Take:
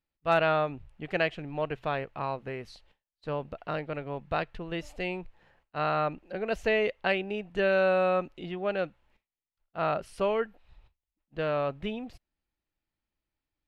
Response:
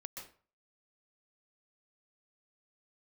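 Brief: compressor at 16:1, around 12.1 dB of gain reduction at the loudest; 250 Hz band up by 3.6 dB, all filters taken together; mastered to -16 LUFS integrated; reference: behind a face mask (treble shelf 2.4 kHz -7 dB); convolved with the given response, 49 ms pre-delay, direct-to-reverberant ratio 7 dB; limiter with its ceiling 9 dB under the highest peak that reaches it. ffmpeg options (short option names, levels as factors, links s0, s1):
-filter_complex "[0:a]equalizer=f=250:t=o:g=5.5,acompressor=threshold=0.0251:ratio=16,alimiter=level_in=2:limit=0.0631:level=0:latency=1,volume=0.501,asplit=2[s0][s1];[1:a]atrim=start_sample=2205,adelay=49[s2];[s1][s2]afir=irnorm=-1:irlink=0,volume=0.668[s3];[s0][s3]amix=inputs=2:normalize=0,highshelf=f=2400:g=-7,volume=16.8"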